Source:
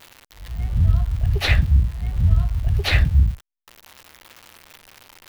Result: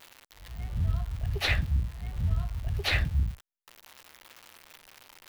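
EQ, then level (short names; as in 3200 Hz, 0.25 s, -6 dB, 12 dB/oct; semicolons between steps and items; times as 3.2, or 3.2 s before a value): low shelf 220 Hz -6.5 dB; -5.5 dB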